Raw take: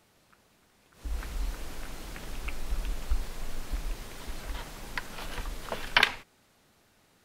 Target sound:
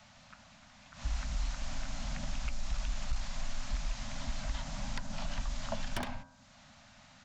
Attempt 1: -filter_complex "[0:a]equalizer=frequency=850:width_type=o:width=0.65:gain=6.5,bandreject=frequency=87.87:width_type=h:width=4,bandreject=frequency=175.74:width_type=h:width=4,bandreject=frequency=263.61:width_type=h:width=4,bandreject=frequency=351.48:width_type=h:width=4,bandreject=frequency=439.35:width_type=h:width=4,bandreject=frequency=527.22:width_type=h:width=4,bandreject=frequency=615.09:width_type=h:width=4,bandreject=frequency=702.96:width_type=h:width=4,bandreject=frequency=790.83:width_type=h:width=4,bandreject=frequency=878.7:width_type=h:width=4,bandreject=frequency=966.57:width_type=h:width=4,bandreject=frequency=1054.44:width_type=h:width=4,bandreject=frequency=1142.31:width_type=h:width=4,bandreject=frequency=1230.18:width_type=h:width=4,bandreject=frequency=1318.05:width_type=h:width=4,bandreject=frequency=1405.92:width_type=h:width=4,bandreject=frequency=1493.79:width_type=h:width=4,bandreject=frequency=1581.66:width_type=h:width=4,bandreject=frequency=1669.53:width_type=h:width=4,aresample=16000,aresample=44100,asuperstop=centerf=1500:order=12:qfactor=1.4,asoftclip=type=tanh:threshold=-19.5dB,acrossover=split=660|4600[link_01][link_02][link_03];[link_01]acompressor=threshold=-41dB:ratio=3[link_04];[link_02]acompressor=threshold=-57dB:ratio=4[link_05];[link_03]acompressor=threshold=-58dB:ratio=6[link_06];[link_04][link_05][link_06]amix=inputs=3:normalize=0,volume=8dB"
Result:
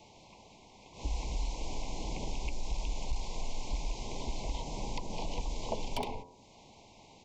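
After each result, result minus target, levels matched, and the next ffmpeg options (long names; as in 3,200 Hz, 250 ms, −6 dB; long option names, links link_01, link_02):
2,000 Hz band −5.0 dB; 1,000 Hz band +3.0 dB
-filter_complex "[0:a]equalizer=frequency=850:width_type=o:width=0.65:gain=6.5,bandreject=frequency=87.87:width_type=h:width=4,bandreject=frequency=175.74:width_type=h:width=4,bandreject=frequency=263.61:width_type=h:width=4,bandreject=frequency=351.48:width_type=h:width=4,bandreject=frequency=439.35:width_type=h:width=4,bandreject=frequency=527.22:width_type=h:width=4,bandreject=frequency=615.09:width_type=h:width=4,bandreject=frequency=702.96:width_type=h:width=4,bandreject=frequency=790.83:width_type=h:width=4,bandreject=frequency=878.7:width_type=h:width=4,bandreject=frequency=966.57:width_type=h:width=4,bandreject=frequency=1054.44:width_type=h:width=4,bandreject=frequency=1142.31:width_type=h:width=4,bandreject=frequency=1230.18:width_type=h:width=4,bandreject=frequency=1318.05:width_type=h:width=4,bandreject=frequency=1405.92:width_type=h:width=4,bandreject=frequency=1493.79:width_type=h:width=4,bandreject=frequency=1581.66:width_type=h:width=4,bandreject=frequency=1669.53:width_type=h:width=4,aresample=16000,aresample=44100,asuperstop=centerf=390:order=12:qfactor=1.4,asoftclip=type=tanh:threshold=-19.5dB,acrossover=split=660|4600[link_01][link_02][link_03];[link_01]acompressor=threshold=-41dB:ratio=3[link_04];[link_02]acompressor=threshold=-57dB:ratio=4[link_05];[link_03]acompressor=threshold=-58dB:ratio=6[link_06];[link_04][link_05][link_06]amix=inputs=3:normalize=0,volume=8dB"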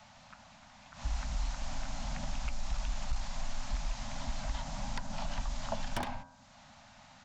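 1,000 Hz band +3.5 dB
-filter_complex "[0:a]bandreject=frequency=87.87:width_type=h:width=4,bandreject=frequency=175.74:width_type=h:width=4,bandreject=frequency=263.61:width_type=h:width=4,bandreject=frequency=351.48:width_type=h:width=4,bandreject=frequency=439.35:width_type=h:width=4,bandreject=frequency=527.22:width_type=h:width=4,bandreject=frequency=615.09:width_type=h:width=4,bandreject=frequency=702.96:width_type=h:width=4,bandreject=frequency=790.83:width_type=h:width=4,bandreject=frequency=878.7:width_type=h:width=4,bandreject=frequency=966.57:width_type=h:width=4,bandreject=frequency=1054.44:width_type=h:width=4,bandreject=frequency=1142.31:width_type=h:width=4,bandreject=frequency=1230.18:width_type=h:width=4,bandreject=frequency=1318.05:width_type=h:width=4,bandreject=frequency=1405.92:width_type=h:width=4,bandreject=frequency=1493.79:width_type=h:width=4,bandreject=frequency=1581.66:width_type=h:width=4,bandreject=frequency=1669.53:width_type=h:width=4,aresample=16000,aresample=44100,asuperstop=centerf=390:order=12:qfactor=1.4,asoftclip=type=tanh:threshold=-19.5dB,acrossover=split=660|4600[link_01][link_02][link_03];[link_01]acompressor=threshold=-41dB:ratio=3[link_04];[link_02]acompressor=threshold=-57dB:ratio=4[link_05];[link_03]acompressor=threshold=-58dB:ratio=6[link_06];[link_04][link_05][link_06]amix=inputs=3:normalize=0,volume=8dB"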